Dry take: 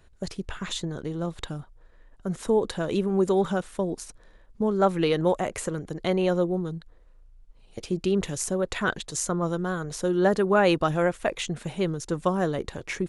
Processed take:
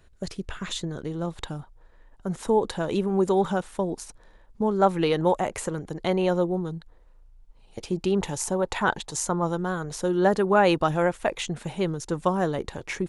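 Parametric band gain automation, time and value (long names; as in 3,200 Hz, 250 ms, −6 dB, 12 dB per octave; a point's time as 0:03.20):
parametric band 870 Hz 0.37 octaves
0:00.86 −2 dB
0:01.46 +6.5 dB
0:07.81 +6.5 dB
0:08.23 +15 dB
0:09.04 +15 dB
0:09.72 +5.5 dB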